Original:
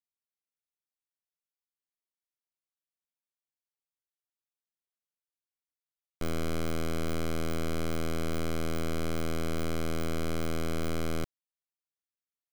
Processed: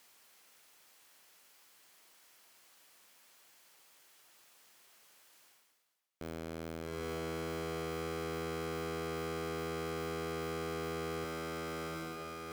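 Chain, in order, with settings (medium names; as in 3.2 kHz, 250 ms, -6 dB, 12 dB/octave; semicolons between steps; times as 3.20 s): high-pass 130 Hz 6 dB/octave; bass shelf 300 Hz -9.5 dB; on a send: echo that smears into a reverb 817 ms, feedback 42%, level -9 dB; on the sum: valve stage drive 44 dB, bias 0.35; treble shelf 4.6 kHz -5 dB; reverse; upward compressor, threshold -51 dBFS; reverse; band-stop 3.7 kHz, Q 29; trim +9.5 dB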